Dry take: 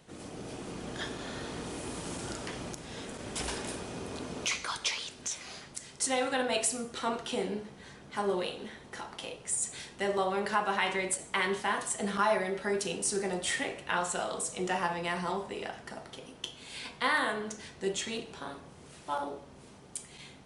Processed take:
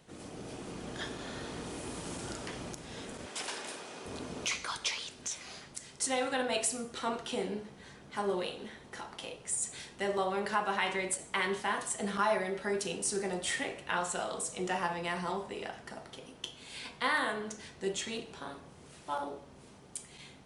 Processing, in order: 3.26–4.06 s: frequency weighting A; trim -2 dB

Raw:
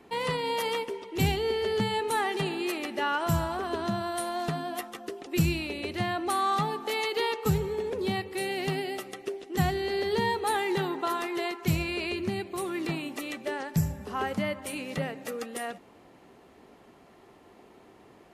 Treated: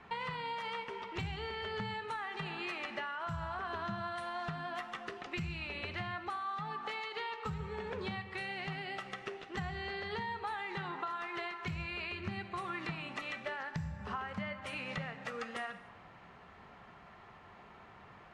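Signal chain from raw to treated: FFT filter 180 Hz 0 dB, 290 Hz -15 dB, 1.3 kHz +5 dB, 5 kHz -3 dB; peak limiter -21 dBFS, peak gain reduction 7.5 dB; compression 10:1, threshold -38 dBFS, peak gain reduction 13.5 dB; distance through air 120 m; gated-style reverb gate 320 ms falling, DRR 10 dB; trim +2.5 dB

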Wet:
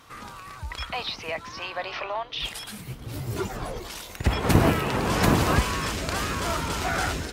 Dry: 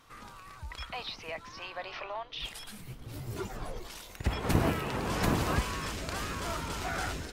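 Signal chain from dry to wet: high-pass 41 Hz; trim +8 dB

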